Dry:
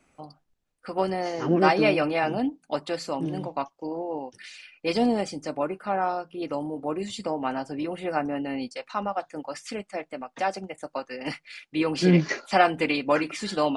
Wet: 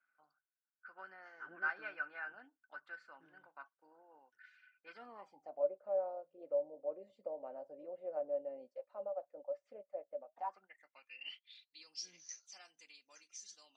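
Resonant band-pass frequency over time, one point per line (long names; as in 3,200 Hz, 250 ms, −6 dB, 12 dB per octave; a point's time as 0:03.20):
resonant band-pass, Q 19
0:04.95 1,500 Hz
0:05.66 570 Hz
0:10.27 570 Hz
0:10.73 1,800 Hz
0:12.12 6,100 Hz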